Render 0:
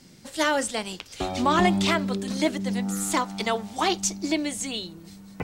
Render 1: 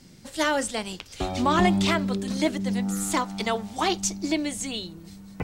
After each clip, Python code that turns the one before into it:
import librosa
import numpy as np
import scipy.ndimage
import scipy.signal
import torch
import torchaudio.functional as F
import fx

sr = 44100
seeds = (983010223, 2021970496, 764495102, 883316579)

y = fx.low_shelf(x, sr, hz=120.0, db=7.5)
y = F.gain(torch.from_numpy(y), -1.0).numpy()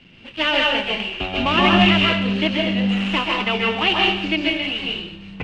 y = fx.dead_time(x, sr, dead_ms=0.12)
y = fx.lowpass_res(y, sr, hz=2800.0, q=9.7)
y = fx.rev_plate(y, sr, seeds[0], rt60_s=0.64, hf_ratio=1.0, predelay_ms=120, drr_db=-2.0)